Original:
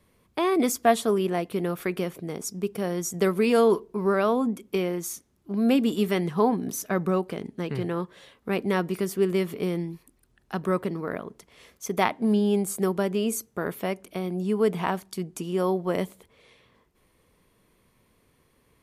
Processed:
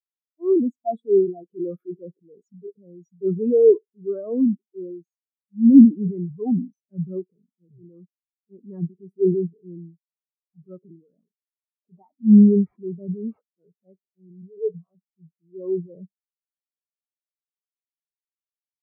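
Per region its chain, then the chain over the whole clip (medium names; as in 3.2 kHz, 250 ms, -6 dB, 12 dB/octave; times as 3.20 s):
1.43–2.75 s: high-pass 190 Hz 6 dB/octave + waveshaping leveller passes 2
11.26–13.68 s: treble shelf 4.4 kHz +7 dB + decimation joined by straight lines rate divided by 8×
14.42–14.95 s: distance through air 160 m + static phaser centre 1.3 kHz, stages 8
whole clip: transient shaper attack -7 dB, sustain +9 dB; loudness maximiser +14.5 dB; spectral contrast expander 4:1; trim -1 dB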